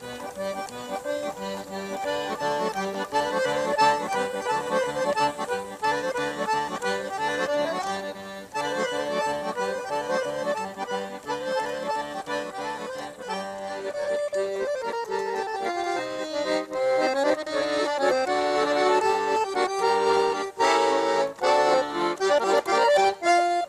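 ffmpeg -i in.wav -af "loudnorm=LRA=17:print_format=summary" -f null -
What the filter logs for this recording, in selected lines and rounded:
Input Integrated:    -25.1 LUFS
Input True Peak:      -8.9 dBTP
Input LRA:             8.1 LU
Input Threshold:     -35.1 LUFS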